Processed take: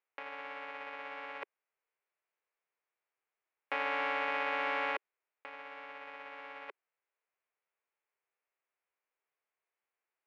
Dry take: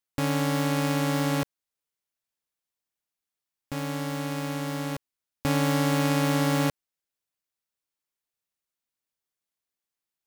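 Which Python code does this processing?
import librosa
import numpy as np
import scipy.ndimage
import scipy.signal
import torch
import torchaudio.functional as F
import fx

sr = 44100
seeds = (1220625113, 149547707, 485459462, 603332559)

y = fx.envelope_flatten(x, sr, power=0.3)
y = scipy.signal.sosfilt(scipy.signal.ellip(3, 1.0, 80, [400.0, 2400.0], 'bandpass', fs=sr, output='sos'), y)
y = fx.over_compress(y, sr, threshold_db=-38.0, ratio=-0.5)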